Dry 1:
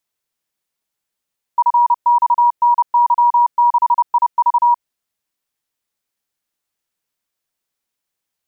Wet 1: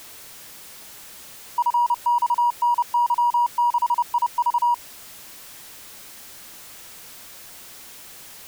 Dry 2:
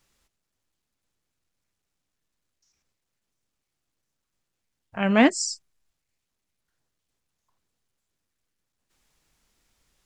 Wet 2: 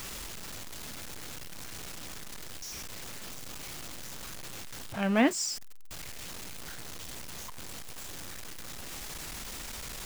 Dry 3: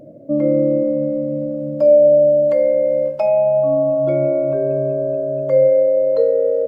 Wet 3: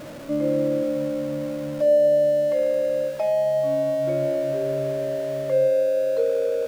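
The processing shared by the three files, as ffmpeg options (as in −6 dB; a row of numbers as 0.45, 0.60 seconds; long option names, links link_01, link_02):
-af "aeval=exprs='val(0)+0.5*0.0447*sgn(val(0))':channel_layout=same,volume=-7.5dB"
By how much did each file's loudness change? −7.0, −15.0, −6.5 LU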